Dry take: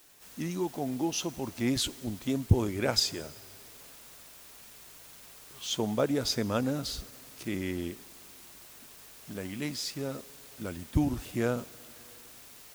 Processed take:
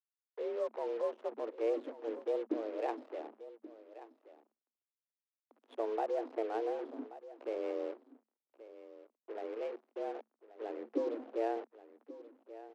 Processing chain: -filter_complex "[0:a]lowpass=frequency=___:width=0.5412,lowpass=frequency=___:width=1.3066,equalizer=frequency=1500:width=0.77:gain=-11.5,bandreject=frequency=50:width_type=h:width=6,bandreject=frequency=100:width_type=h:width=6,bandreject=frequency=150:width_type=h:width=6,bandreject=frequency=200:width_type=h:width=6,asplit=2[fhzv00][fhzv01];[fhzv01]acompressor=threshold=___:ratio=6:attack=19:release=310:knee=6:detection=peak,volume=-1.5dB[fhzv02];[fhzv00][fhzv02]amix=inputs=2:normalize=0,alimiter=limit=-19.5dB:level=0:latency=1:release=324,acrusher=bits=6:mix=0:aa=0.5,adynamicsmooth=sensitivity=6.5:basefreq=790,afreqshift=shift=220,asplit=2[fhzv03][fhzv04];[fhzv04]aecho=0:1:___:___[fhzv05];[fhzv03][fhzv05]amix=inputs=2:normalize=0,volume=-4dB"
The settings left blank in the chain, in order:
2300, 2300, -47dB, 1130, 0.158